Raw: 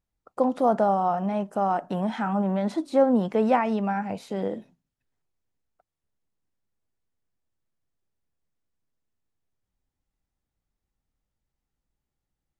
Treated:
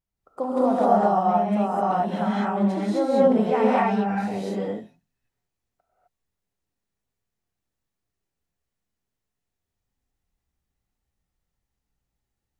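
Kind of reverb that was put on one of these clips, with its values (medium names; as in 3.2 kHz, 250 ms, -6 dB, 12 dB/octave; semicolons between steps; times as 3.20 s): gated-style reverb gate 280 ms rising, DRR -8 dB; trim -5.5 dB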